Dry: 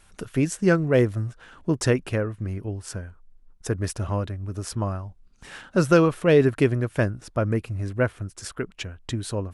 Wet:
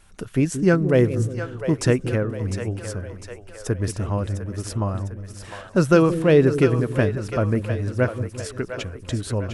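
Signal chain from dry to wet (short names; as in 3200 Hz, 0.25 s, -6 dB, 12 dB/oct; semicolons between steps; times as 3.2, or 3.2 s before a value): low shelf 480 Hz +3 dB; on a send: split-band echo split 450 Hz, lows 0.178 s, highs 0.703 s, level -9 dB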